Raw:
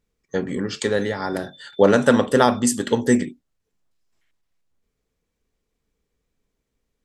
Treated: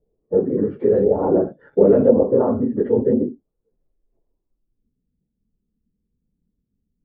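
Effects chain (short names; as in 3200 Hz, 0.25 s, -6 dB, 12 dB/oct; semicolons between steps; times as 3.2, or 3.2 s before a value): phase scrambler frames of 50 ms; in parallel at +2.5 dB: negative-ratio compressor -22 dBFS, ratio -1; on the sum: LFO low-pass saw up 0.96 Hz 730–3200 Hz; 1.15–2.1 sample leveller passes 1; low-pass sweep 460 Hz -> 210 Hz, 4.24–5.02; gain -8 dB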